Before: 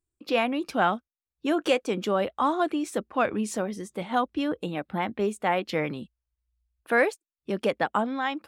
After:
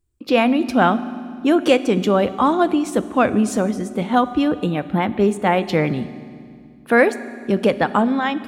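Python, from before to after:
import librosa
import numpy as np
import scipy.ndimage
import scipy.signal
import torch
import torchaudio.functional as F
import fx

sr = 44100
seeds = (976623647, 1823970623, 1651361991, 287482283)

y = fx.low_shelf(x, sr, hz=260.0, db=10.0)
y = fx.rev_fdn(y, sr, rt60_s=2.1, lf_ratio=1.6, hf_ratio=0.95, size_ms=24.0, drr_db=13.5)
y = y * librosa.db_to_amplitude(6.0)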